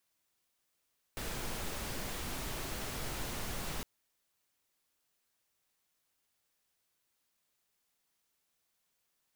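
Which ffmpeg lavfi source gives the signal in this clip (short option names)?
-f lavfi -i "anoisesrc=c=pink:a=0.0575:d=2.66:r=44100:seed=1"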